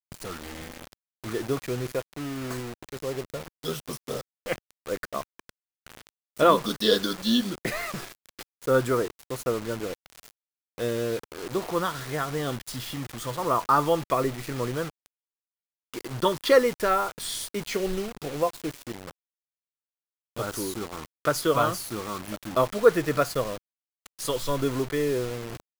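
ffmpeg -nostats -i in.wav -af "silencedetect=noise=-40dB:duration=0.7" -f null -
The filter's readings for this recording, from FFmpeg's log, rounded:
silence_start: 15.06
silence_end: 15.94 | silence_duration: 0.88
silence_start: 19.11
silence_end: 20.36 | silence_duration: 1.26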